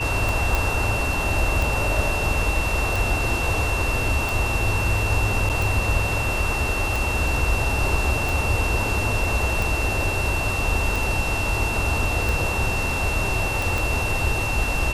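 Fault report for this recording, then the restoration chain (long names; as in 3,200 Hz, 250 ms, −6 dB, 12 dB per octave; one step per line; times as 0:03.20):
scratch tick 45 rpm
whistle 2,700 Hz −26 dBFS
0:00.55: click
0:05.49–0:05.50: drop-out 8.2 ms
0:13.78: click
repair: click removal
notch filter 2,700 Hz, Q 30
repair the gap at 0:05.49, 8.2 ms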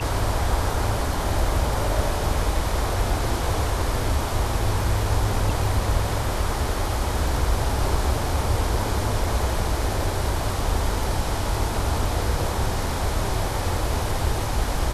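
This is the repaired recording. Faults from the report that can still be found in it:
0:13.78: click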